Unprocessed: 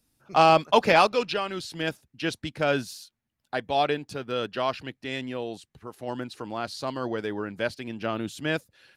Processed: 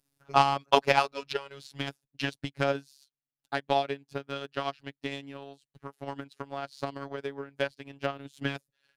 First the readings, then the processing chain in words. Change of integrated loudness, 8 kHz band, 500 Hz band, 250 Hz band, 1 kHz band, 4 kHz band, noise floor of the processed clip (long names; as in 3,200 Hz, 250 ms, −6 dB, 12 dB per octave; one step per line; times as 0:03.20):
−4.5 dB, −6.0 dB, −5.5 dB, −6.5 dB, −4.0 dB, −4.0 dB, below −85 dBFS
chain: phases set to zero 139 Hz
transient designer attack +12 dB, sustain −9 dB
level −7.5 dB